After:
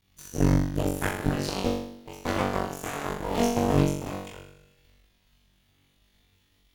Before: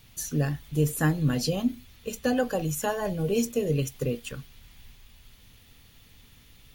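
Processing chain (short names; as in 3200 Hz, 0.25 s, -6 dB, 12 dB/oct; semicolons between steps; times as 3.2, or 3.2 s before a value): cycle switcher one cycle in 3, muted; high shelf 8400 Hz -6.5 dB; flutter echo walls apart 3.6 m, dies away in 1.1 s; added harmonics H 3 -12 dB, 4 -11 dB, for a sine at -8 dBFS; gain -2 dB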